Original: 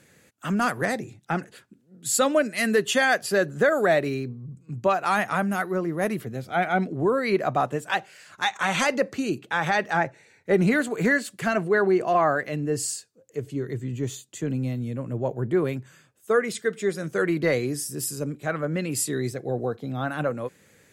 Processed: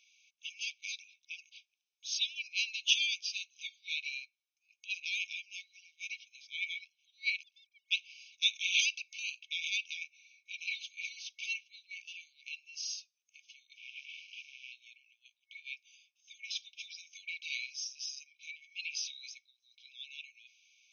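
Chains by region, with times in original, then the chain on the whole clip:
7.43–7.91 s: formants replaced by sine waves + cascade formant filter u + waveshaping leveller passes 2
13.77–14.72 s: one-bit delta coder 16 kbps, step -46 dBFS + waveshaping leveller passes 3
whole clip: band-stop 4.4 kHz, Q 6.9; FFT band-pass 2.2–6.5 kHz; dynamic bell 3.5 kHz, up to +3 dB, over -45 dBFS, Q 1.7

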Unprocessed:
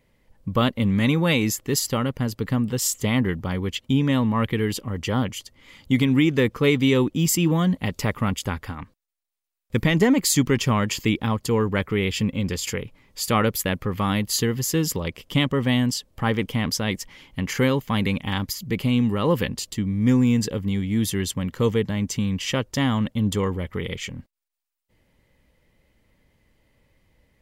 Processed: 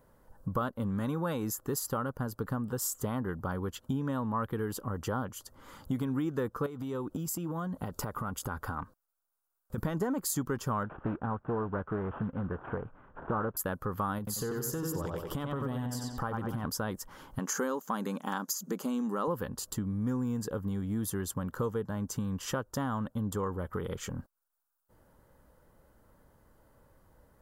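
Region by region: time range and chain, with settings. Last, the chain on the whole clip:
6.66–9.78 s: band-stop 1.7 kHz, Q 18 + compression 16:1, threshold -26 dBFS
10.83–13.57 s: CVSD coder 16 kbps + distance through air 270 m + loudspeaker Doppler distortion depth 0.28 ms
14.18–16.65 s: filtered feedback delay 90 ms, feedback 44%, low-pass 4.4 kHz, level -4 dB + compression 4:1, threshold -24 dBFS + phaser 1.3 Hz, feedback 25%
17.39–19.28 s: brick-wall FIR high-pass 170 Hz + peaking EQ 6.5 kHz +14 dB 0.56 oct
whole clip: FFT filter 240 Hz 0 dB, 1.5 kHz +9 dB, 2.1 kHz -15 dB, 12 kHz +5 dB; compression 3:1, threshold -34 dBFS

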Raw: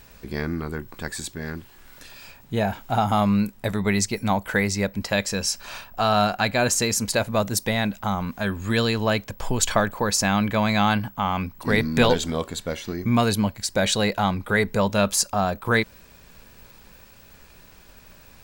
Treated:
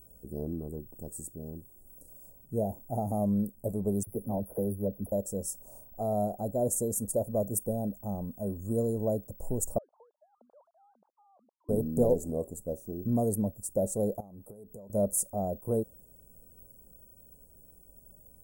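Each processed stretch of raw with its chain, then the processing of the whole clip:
4.03–5.12 s: phase dispersion lows, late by 41 ms, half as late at 570 Hz + overload inside the chain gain 16.5 dB + brick-wall FIR band-stop 2.8–9.4 kHz
9.78–11.69 s: formants replaced by sine waves + Bessel high-pass 2 kHz + compression 3:1, threshold -38 dBFS
14.20–14.90 s: bass shelf 120 Hz -10.5 dB + compression 16:1, threshold -33 dBFS
whole clip: dynamic bell 500 Hz, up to +4 dB, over -30 dBFS, Q 0.79; elliptic band-stop 610–8900 Hz, stop band 70 dB; treble shelf 3.4 kHz +6.5 dB; trim -8 dB

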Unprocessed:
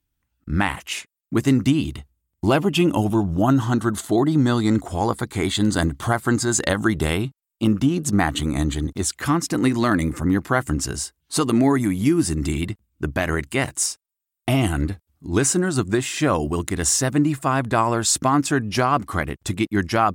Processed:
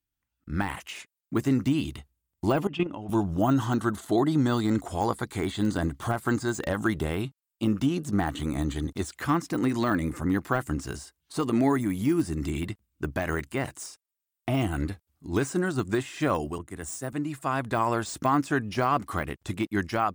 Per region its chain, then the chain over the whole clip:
2.67–3.09 s: low-pass 2.7 kHz + level held to a coarse grid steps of 16 dB
16.58–17.13 s: resonant high shelf 6.4 kHz +7.5 dB, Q 1.5 + three bands expanded up and down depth 70%
whole clip: level rider gain up to 8.5 dB; bass shelf 380 Hz -5 dB; de-esser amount 65%; trim -7.5 dB

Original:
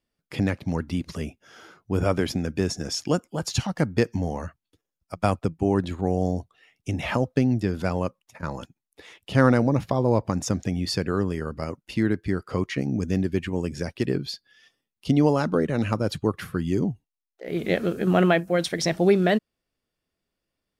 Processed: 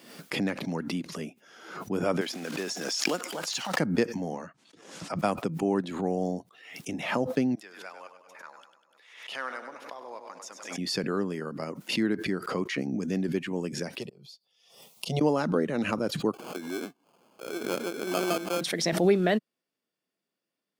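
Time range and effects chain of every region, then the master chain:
2.21–3.80 s: block-companded coder 5-bit + frequency weighting A + swell ahead of each attack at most 32 dB/s
4.33–5.19 s: low-pass 8.3 kHz 24 dB/octave + three bands compressed up and down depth 100%
7.55–10.78 s: Bessel high-pass 1.7 kHz + treble shelf 2.5 kHz -10.5 dB + two-band feedback delay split 580 Hz, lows 141 ms, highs 99 ms, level -9 dB
14.00–15.21 s: slow attack 746 ms + static phaser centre 690 Hz, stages 4
16.33–18.61 s: high-pass 280 Hz 24 dB/octave + sample-rate reducer 1.9 kHz + valve stage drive 16 dB, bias 0.65
whole clip: high-pass 170 Hz 24 dB/octave; swell ahead of each attack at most 71 dB/s; trim -3.5 dB

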